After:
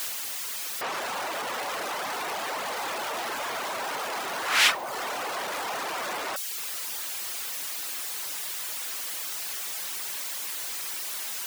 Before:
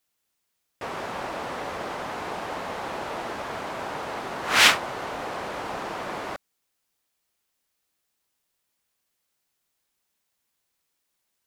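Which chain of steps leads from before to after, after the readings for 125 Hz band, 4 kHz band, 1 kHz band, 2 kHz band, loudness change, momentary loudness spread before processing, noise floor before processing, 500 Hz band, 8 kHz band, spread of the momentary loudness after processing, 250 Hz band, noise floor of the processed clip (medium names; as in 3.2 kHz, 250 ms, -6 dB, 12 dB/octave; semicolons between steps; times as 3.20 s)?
-11.0 dB, -1.0 dB, -0.5 dB, -1.5 dB, -2.5 dB, 16 LU, -78 dBFS, -2.0 dB, +5.0 dB, 1 LU, -6.5 dB, -34 dBFS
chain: jump at every zero crossing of -24 dBFS; reverb removal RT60 0.67 s; high-pass 760 Hz 6 dB/octave; in parallel at -3 dB: saturation -21.5 dBFS, distortion -9 dB; on the sum: trim -6 dB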